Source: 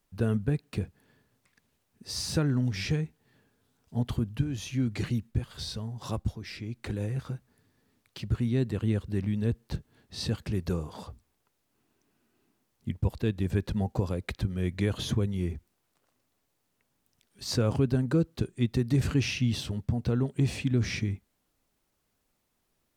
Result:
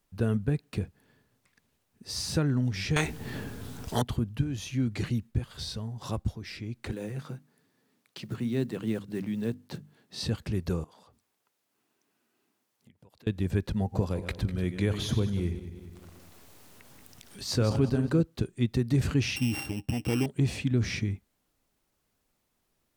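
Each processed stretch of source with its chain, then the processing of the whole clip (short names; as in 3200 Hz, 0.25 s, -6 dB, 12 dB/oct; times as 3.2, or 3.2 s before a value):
2.96–4.02 low shelf 230 Hz +10 dB + spectral compressor 4:1
6.92–10.22 block floating point 7-bit + HPF 140 Hz 24 dB/oct + notches 50/100/150/200/250/300 Hz
10.84–13.27 HPF 130 Hz + low shelf 350 Hz -8 dB + compressor, threshold -55 dBFS
13.8–18.21 regenerating reverse delay 0.1 s, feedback 51%, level -10 dB + upward compressor, threshold -34 dBFS
19.36–20.26 sample sorter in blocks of 16 samples + low shelf 160 Hz -5 dB + small resonant body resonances 310/800 Hz, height 13 dB, ringing for 85 ms
whole clip: dry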